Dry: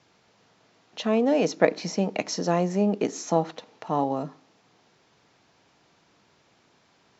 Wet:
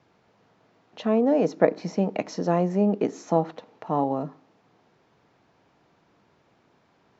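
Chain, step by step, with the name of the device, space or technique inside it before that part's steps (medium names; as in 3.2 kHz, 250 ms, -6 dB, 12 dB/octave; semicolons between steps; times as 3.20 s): through cloth (treble shelf 2.8 kHz -14.5 dB); 1.12–1.91 s: dynamic bell 2.9 kHz, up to -5 dB, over -44 dBFS, Q 1.3; trim +1.5 dB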